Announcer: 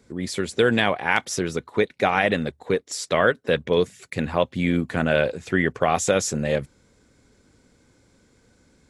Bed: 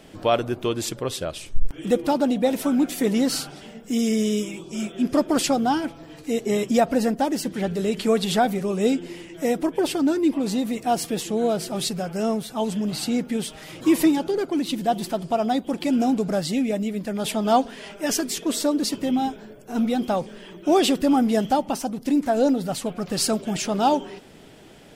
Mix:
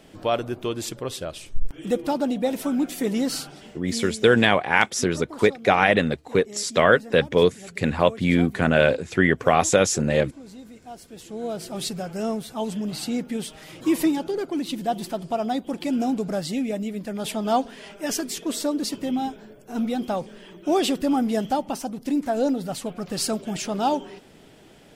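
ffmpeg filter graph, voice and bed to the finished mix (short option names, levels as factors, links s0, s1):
-filter_complex "[0:a]adelay=3650,volume=1.33[s0];[1:a]volume=4.22,afade=t=out:st=3.65:d=0.52:silence=0.16788,afade=t=in:st=11.1:d=0.77:silence=0.16788[s1];[s0][s1]amix=inputs=2:normalize=0"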